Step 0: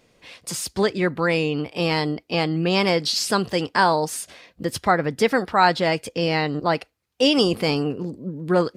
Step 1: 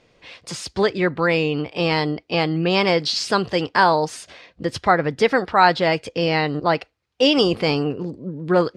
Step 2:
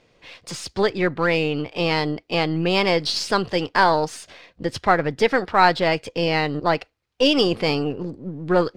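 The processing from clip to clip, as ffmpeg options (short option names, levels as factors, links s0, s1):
-af "lowpass=5200,equalizer=f=220:t=o:w=0.63:g=-4,volume=1.33"
-af "aeval=exprs='if(lt(val(0),0),0.708*val(0),val(0))':c=same"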